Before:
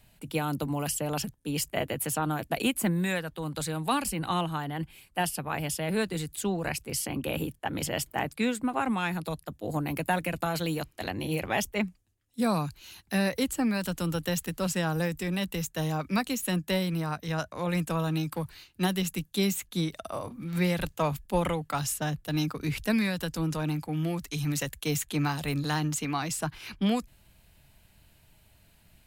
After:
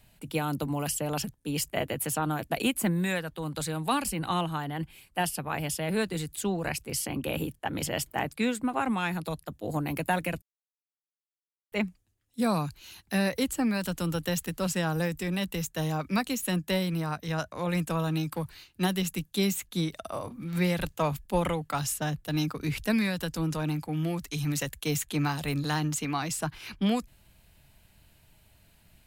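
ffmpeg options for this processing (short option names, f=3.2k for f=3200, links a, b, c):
-filter_complex "[0:a]asplit=3[a][b][c];[a]atrim=end=10.42,asetpts=PTS-STARTPTS,afade=t=out:st=10.416:d=0.004:c=hsin[d];[b]atrim=start=10.42:end=11.72,asetpts=PTS-STARTPTS,volume=0[e];[c]atrim=start=11.72,asetpts=PTS-STARTPTS,afade=t=in:d=0.004:c=hsin[f];[d][e][f]concat=n=3:v=0:a=1"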